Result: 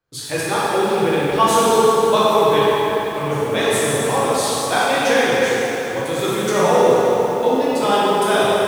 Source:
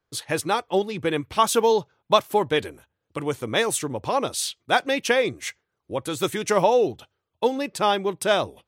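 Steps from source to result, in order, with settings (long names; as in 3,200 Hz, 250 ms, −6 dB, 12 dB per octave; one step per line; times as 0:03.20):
dense smooth reverb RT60 4.1 s, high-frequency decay 0.6×, DRR −9 dB
feedback echo at a low word length 98 ms, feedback 80%, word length 5 bits, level −13 dB
level −3 dB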